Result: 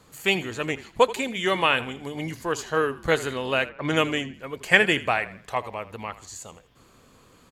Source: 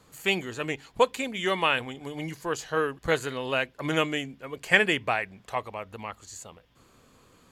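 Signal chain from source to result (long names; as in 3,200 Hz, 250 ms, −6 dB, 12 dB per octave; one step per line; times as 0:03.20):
echo with shifted repeats 81 ms, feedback 38%, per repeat −44 Hz, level −16.5 dB
0:03.69–0:04.34: low-pass that shuts in the quiet parts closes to 2,000 Hz, open at −21.5 dBFS
level +3 dB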